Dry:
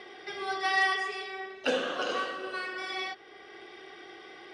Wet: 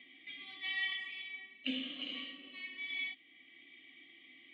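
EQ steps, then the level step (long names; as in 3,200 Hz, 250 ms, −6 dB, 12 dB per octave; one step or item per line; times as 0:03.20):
formant filter i
dynamic equaliser 4,400 Hz, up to +5 dB, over −60 dBFS, Q 1.2
phaser with its sweep stopped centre 1,500 Hz, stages 6
+6.5 dB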